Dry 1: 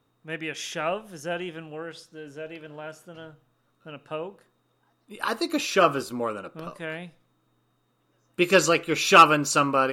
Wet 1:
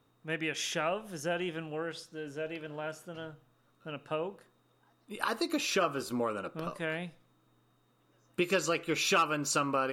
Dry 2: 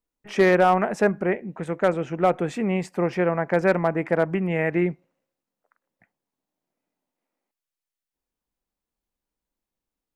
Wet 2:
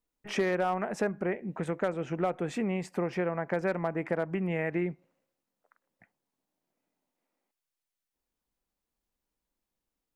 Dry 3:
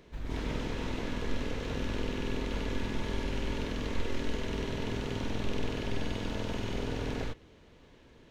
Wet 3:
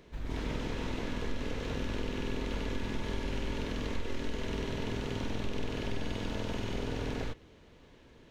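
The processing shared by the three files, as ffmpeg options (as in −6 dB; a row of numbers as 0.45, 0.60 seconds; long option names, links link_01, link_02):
-af "acompressor=threshold=-29dB:ratio=3"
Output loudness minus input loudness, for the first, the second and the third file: −10.0, −9.0, −1.0 LU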